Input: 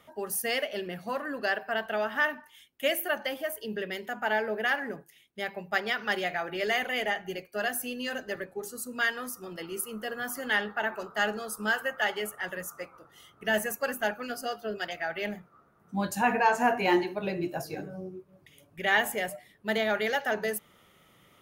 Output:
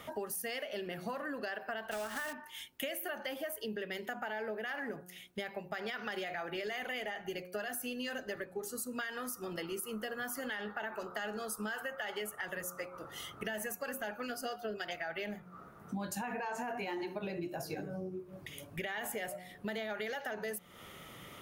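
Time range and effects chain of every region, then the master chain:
1.91–2.33 block floating point 3-bit + bell 8500 Hz +4 dB 0.27 oct
whole clip: de-hum 180.5 Hz, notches 8; limiter -24.5 dBFS; compressor 5:1, threshold -48 dBFS; gain +9.5 dB

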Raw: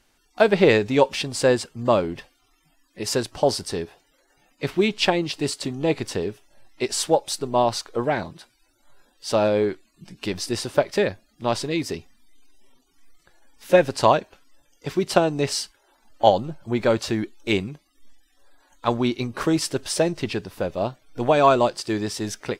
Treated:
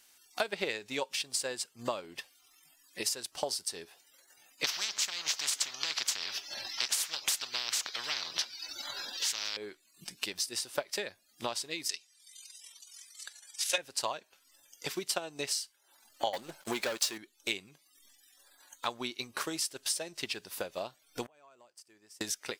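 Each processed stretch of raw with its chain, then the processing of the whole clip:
4.64–9.57 resonant high shelf 6700 Hz -12 dB, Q 3 + spectral compressor 10:1
11.89–13.78 weighting filter ITU-R 468 + transient shaper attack +6 dB, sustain -5 dB
16.33–17.18 bell 100 Hz -12.5 dB 1.8 oct + sample leveller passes 3
21.26–22.21 bell 3800 Hz -10 dB 0.55 oct + compressor 5:1, threshold -21 dBFS + flipped gate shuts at -31 dBFS, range -28 dB
whole clip: tilt +4 dB/oct; compressor 2.5:1, threshold -35 dBFS; transient shaper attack +5 dB, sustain -3 dB; gain -4.5 dB

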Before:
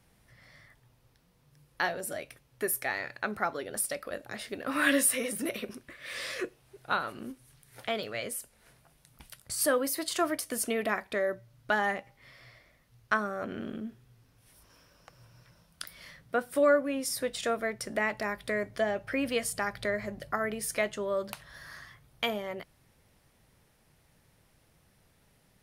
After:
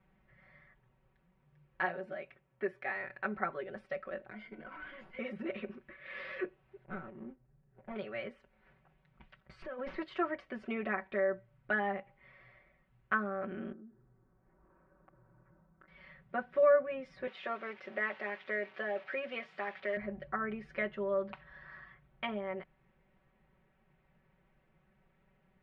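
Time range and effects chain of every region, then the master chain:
1.85–2.96 HPF 140 Hz 6 dB/oct + mismatched tape noise reduction decoder only
4.31–5.19 ripple EQ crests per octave 1.8, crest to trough 16 dB + tube stage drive 20 dB, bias 0.75 + compressor 10:1, threshold -38 dBFS
6.84–7.96 median filter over 41 samples + air absorption 270 m
9.62–10.03 negative-ratio compressor -33 dBFS + high shelf 8800 Hz -11 dB + running maximum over 3 samples
13.72–15.88 LPF 1500 Hz 24 dB/oct + compressor 3:1, threshold -54 dBFS + bell 320 Hz +9.5 dB 0.4 oct
17.27–19.97 switching spikes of -26 dBFS + BPF 350–5400 Hz
whole clip: LPF 2500 Hz 24 dB/oct; comb 5.3 ms, depth 99%; gain -7 dB

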